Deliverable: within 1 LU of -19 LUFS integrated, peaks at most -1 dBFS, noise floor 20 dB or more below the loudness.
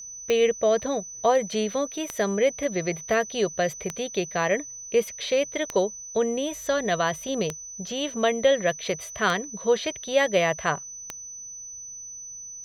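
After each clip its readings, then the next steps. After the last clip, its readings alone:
clicks found 7; steady tone 6 kHz; tone level -37 dBFS; loudness -25.5 LUFS; peak level -8.5 dBFS; loudness target -19.0 LUFS
-> de-click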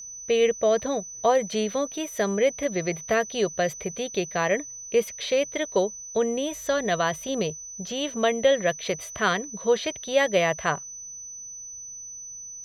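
clicks found 0; steady tone 6 kHz; tone level -37 dBFS
-> band-stop 6 kHz, Q 30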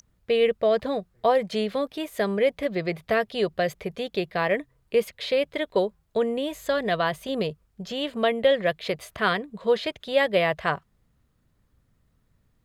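steady tone not found; loudness -26.0 LUFS; peak level -8.5 dBFS; loudness target -19.0 LUFS
-> trim +7 dB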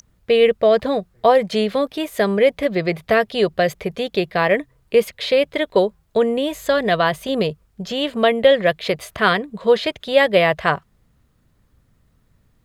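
loudness -19.0 LUFS; peak level -1.5 dBFS; noise floor -61 dBFS

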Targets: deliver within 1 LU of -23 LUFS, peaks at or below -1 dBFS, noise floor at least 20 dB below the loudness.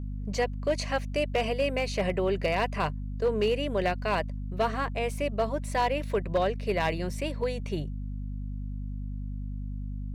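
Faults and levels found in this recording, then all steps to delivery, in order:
clipped samples 0.5%; clipping level -19.0 dBFS; hum 50 Hz; highest harmonic 250 Hz; hum level -32 dBFS; loudness -30.0 LUFS; peak level -19.0 dBFS; loudness target -23.0 LUFS
-> clip repair -19 dBFS; hum notches 50/100/150/200/250 Hz; trim +7 dB

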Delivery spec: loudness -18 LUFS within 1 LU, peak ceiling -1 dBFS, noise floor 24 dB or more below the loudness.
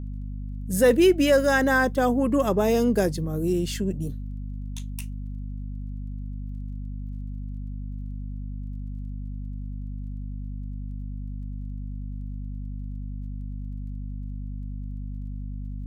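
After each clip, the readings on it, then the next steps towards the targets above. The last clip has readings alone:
tick rate 15 per s; hum 50 Hz; highest harmonic 250 Hz; hum level -30 dBFS; loudness -28.0 LUFS; peak level -8.5 dBFS; loudness target -18.0 LUFS
-> de-click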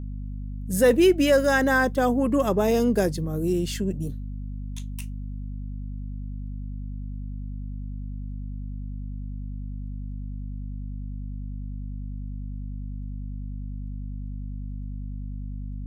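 tick rate 0.13 per s; hum 50 Hz; highest harmonic 250 Hz; hum level -30 dBFS
-> hum notches 50/100/150/200/250 Hz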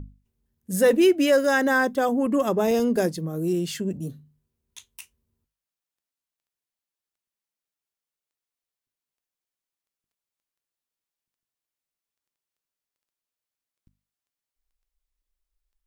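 hum not found; loudness -22.0 LUFS; peak level -8.5 dBFS; loudness target -18.0 LUFS
-> trim +4 dB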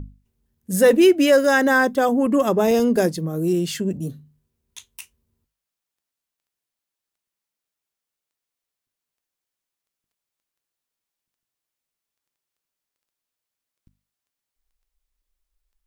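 loudness -18.0 LUFS; peak level -4.5 dBFS; noise floor -86 dBFS

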